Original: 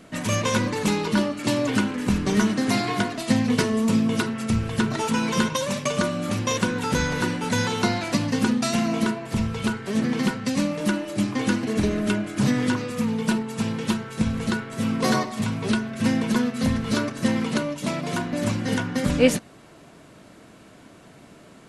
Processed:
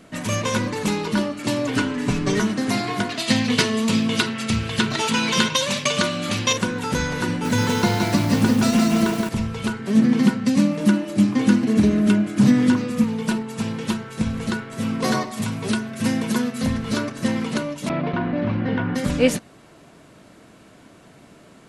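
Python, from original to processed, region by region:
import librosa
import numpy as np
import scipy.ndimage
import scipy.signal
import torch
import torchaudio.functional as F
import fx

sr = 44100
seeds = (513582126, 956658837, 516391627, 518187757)

y = fx.chain(x, sr, fx.lowpass(hz=8800.0, slope=12),
    fx.comb(ms=7.0, depth=0.98), at=(1.76, 2.4))
y = fx.chain(y, sr, fx.highpass(hz=41.0, slope=12),
    fx.peak_eq(hz=3600.0, db=10.5, octaves=2.1),
    fx.notch(hz=5500.0, q=20.0), at=(3.09, 6.53))
y = fx.chain(y, sr, fx.low_shelf(hz=250.0, db=6.0),
    fx.echo_crushed(ms=169, feedback_pct=55, bits=6, wet_db=-3.0), at=(7.28, 9.29))
y = fx.chain(y, sr, fx.highpass(hz=49.0, slope=12),
    fx.peak_eq(hz=220.0, db=8.5, octaves=0.87), at=(9.79, 13.04))
y = fx.chain(y, sr, fx.highpass(hz=55.0, slope=12),
    fx.high_shelf(hz=8700.0, db=10.0), at=(15.31, 16.62))
y = fx.chain(y, sr, fx.gate_hold(open_db=-17.0, close_db=-28.0, hold_ms=71.0, range_db=-21, attack_ms=1.4, release_ms=100.0),
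    fx.gaussian_blur(sigma=3.0),
    fx.env_flatten(amount_pct=70), at=(17.89, 18.95))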